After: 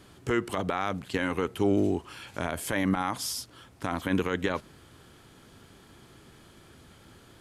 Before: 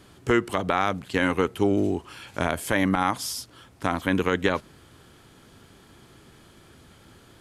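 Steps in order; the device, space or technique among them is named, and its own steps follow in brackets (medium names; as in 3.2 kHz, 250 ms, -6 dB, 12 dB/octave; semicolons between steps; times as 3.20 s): clipper into limiter (hard clipper -6.5 dBFS, distortion -48 dB; peak limiter -13.5 dBFS, peak gain reduction 7 dB); trim -1.5 dB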